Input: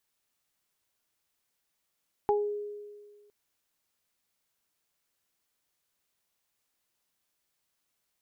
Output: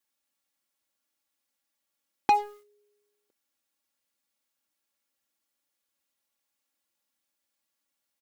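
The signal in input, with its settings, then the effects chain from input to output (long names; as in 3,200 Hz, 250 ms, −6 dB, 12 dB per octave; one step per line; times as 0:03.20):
harmonic partials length 1.01 s, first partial 414 Hz, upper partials 1 dB, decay 1.69 s, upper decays 0.25 s, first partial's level −22.5 dB
high-pass filter 80 Hz 12 dB per octave
comb filter 3.6 ms, depth 95%
leveller curve on the samples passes 3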